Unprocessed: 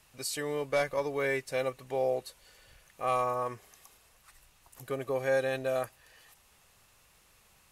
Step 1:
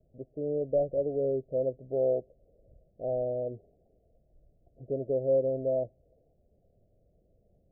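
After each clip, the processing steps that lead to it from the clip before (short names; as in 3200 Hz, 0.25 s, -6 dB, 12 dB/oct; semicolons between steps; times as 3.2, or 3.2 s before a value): steep low-pass 680 Hz 96 dB/oct; gain +3 dB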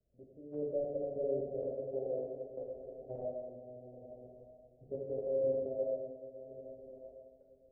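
diffused feedback echo 0.489 s, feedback 42%, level -5 dB; level quantiser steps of 15 dB; non-linear reverb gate 0.44 s falling, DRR -3.5 dB; gain -9 dB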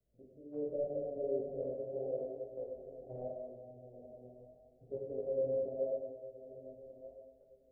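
chorus 0.8 Hz, delay 17 ms, depth 7.4 ms; gain +1.5 dB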